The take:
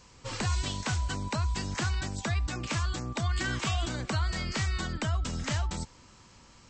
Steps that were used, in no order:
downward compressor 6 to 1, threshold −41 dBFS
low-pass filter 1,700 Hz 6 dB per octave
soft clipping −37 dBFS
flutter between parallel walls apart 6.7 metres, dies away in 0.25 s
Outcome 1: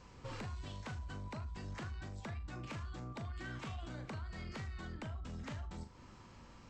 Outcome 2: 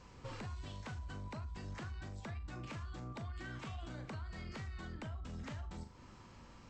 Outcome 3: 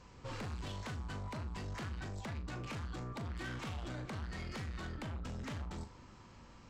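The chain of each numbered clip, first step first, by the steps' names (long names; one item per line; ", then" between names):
low-pass filter, then downward compressor, then flutter between parallel walls, then soft clipping
flutter between parallel walls, then downward compressor, then low-pass filter, then soft clipping
low-pass filter, then soft clipping, then downward compressor, then flutter between parallel walls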